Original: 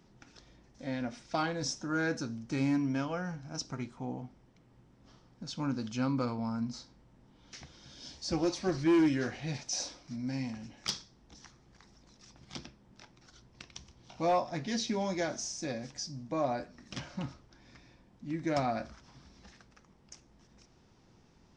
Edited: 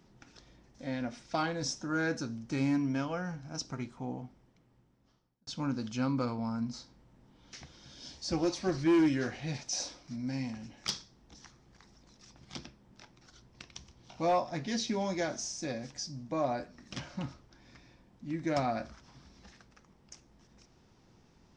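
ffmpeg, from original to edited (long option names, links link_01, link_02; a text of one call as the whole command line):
ffmpeg -i in.wav -filter_complex "[0:a]asplit=2[link_01][link_02];[link_01]atrim=end=5.47,asetpts=PTS-STARTPTS,afade=type=out:start_time=4.14:duration=1.33[link_03];[link_02]atrim=start=5.47,asetpts=PTS-STARTPTS,afade=type=in:duration=0.004:curve=hsin[link_04];[link_03][link_04]concat=n=2:v=0:a=1" out.wav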